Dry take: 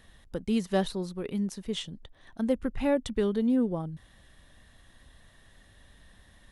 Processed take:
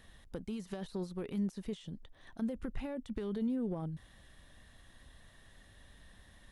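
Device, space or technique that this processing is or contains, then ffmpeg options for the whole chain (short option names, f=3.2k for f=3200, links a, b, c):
de-esser from a sidechain: -filter_complex "[0:a]asplit=2[a][b];[b]highpass=f=5.7k:p=1,apad=whole_len=287299[c];[a][c]sidechaincompress=threshold=-54dB:ratio=12:attack=1.6:release=31,volume=-2dB"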